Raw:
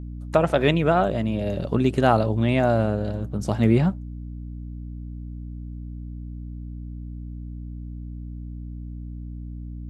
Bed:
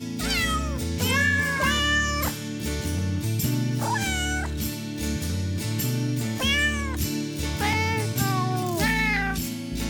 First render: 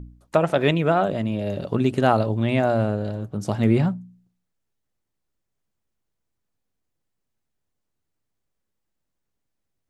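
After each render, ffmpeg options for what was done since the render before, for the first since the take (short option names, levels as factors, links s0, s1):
-af "bandreject=f=60:t=h:w=4,bandreject=f=120:t=h:w=4,bandreject=f=180:t=h:w=4,bandreject=f=240:t=h:w=4,bandreject=f=300:t=h:w=4"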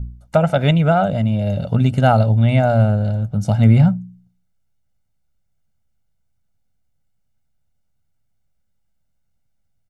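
-af "bass=f=250:g=8,treble=f=4000:g=0,aecho=1:1:1.4:0.72"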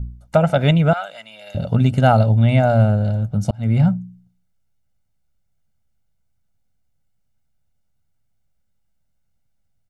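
-filter_complex "[0:a]asettb=1/sr,asplit=3[s0][s1][s2];[s0]atrim=end=0.934[s3];[s1]atrim=start=0.93:end=1.55,asetpts=PTS-STARTPTS,afade=t=in:d=0.004:c=qsin,afade=t=out:st=0.616:d=0.004:c=qsin,highpass=1400[s4];[s2]atrim=start=1.546[s5];[s3][s4]acrossfade=d=0.004:c1=hsin:c2=qsin[s6];[s6][s5]acrossfade=d=0.004:c1=qsin:c2=hsin,asplit=2[s7][s8];[s7]atrim=end=3.51,asetpts=PTS-STARTPTS,afade=t=out:st=3.506:d=0.004:c=hsin[s9];[s8]atrim=start=3.51,asetpts=PTS-STARTPTS,afade=t=in:d=0.42[s10];[s9][s10]concat=n=2:v=0:a=1"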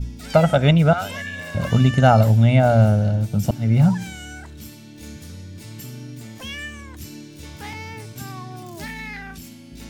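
-filter_complex "[1:a]volume=0.316[s0];[0:a][s0]amix=inputs=2:normalize=0"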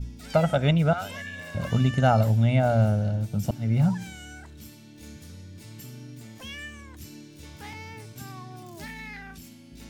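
-af "volume=0.473"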